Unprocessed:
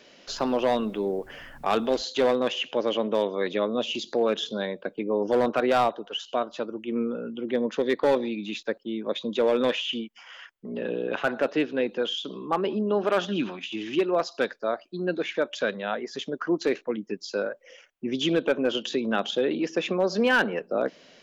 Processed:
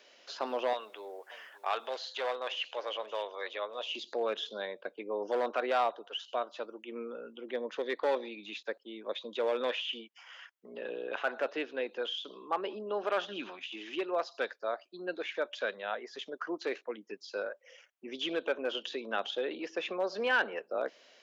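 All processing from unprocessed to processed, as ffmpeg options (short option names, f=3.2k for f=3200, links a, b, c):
-filter_complex "[0:a]asettb=1/sr,asplit=3[a][b][c];[a]atrim=end=0.734[d];[b]atrim=start=0.73:end=3.91,asetpts=PTS-STARTPTS,afade=t=in:d=0.004:c=qsin,afade=t=out:st=3.176:d=0.004:c=qsin,highpass=620,aecho=1:1:581:0.126,atrim=end_sample=140238[e];[c]atrim=start=3.906[f];[d][e]acrossfade=d=0.004:c1=hsin:c2=qsin[g];[g][f]acrossfade=d=0.004:c1=qsin:c2=hsin,highpass=490,acrossover=split=4900[h][i];[i]acompressor=threshold=-56dB:ratio=4:attack=1:release=60[j];[h][j]amix=inputs=2:normalize=0,volume=-5.5dB"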